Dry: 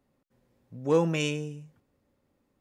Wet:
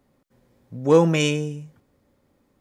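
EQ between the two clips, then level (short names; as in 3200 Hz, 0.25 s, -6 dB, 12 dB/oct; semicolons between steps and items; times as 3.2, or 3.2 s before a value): notch 2700 Hz, Q 20; +8.0 dB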